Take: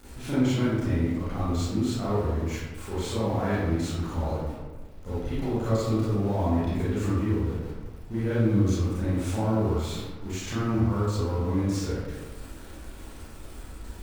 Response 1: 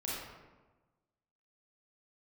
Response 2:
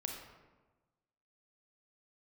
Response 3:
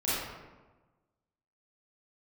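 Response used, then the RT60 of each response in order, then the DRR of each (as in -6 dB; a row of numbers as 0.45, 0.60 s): 3; 1.2, 1.2, 1.2 s; -7.0, 1.5, -11.5 dB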